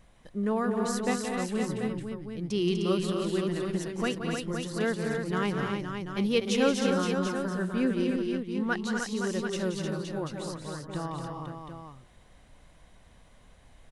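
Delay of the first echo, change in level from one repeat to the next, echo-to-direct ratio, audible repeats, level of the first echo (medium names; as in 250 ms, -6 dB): 176 ms, no regular repeats, 0.0 dB, 5, -9.0 dB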